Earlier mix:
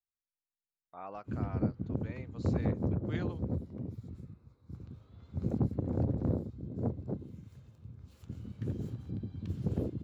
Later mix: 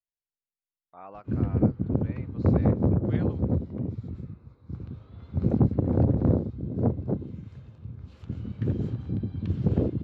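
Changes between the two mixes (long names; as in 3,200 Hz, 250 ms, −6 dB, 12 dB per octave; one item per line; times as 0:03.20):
background +9.0 dB
master: add low-pass filter 3,600 Hz 12 dB per octave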